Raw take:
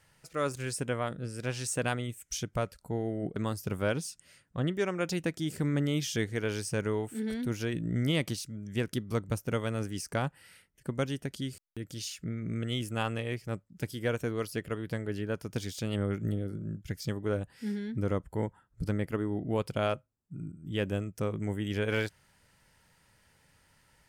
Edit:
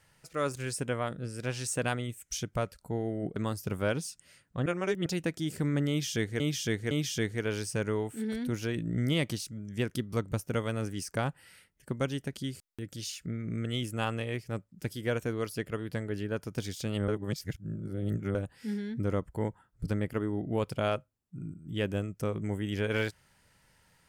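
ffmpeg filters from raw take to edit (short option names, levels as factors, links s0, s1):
-filter_complex "[0:a]asplit=7[s0][s1][s2][s3][s4][s5][s6];[s0]atrim=end=4.662[s7];[s1]atrim=start=4.658:end=5.062,asetpts=PTS-STARTPTS,areverse[s8];[s2]atrim=start=5.058:end=6.402[s9];[s3]atrim=start=5.888:end=6.402[s10];[s4]atrim=start=5.888:end=16.062[s11];[s5]atrim=start=16.058:end=17.332,asetpts=PTS-STARTPTS,areverse[s12];[s6]atrim=start=17.328[s13];[s7][s8]acrossfade=d=0.004:c1=hsin:c2=hsin[s14];[s14][s9]acrossfade=d=0.004:c1=hsin:c2=hsin[s15];[s15][s10]acrossfade=d=0.004:c1=hsin:c2=hsin[s16];[s16][s11]acrossfade=d=0.004:c1=hsin:c2=hsin[s17];[s17][s12]acrossfade=d=0.004:c1=hsin:c2=hsin[s18];[s18][s13]acrossfade=d=0.004:c1=hsin:c2=hsin"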